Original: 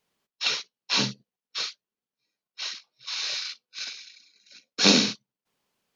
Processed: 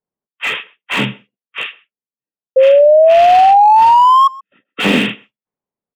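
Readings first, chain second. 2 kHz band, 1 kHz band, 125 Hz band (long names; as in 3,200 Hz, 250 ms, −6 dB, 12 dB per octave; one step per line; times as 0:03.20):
+11.5 dB, +32.0 dB, can't be measured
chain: hearing-aid frequency compression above 1,100 Hz 1.5 to 1
noise gate −53 dBFS, range −19 dB
low-pass that shuts in the quiet parts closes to 830 Hz, open at −24 dBFS
dynamic equaliser 5,500 Hz, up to −6 dB, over −39 dBFS, Q 0.73
sound drawn into the spectrogram rise, 0:02.56–0:04.28, 520–1,100 Hz −18 dBFS
far-end echo of a speakerphone 130 ms, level −23 dB
boost into a limiter +12 dB
slew-rate limiting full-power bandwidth 570 Hz
level −1 dB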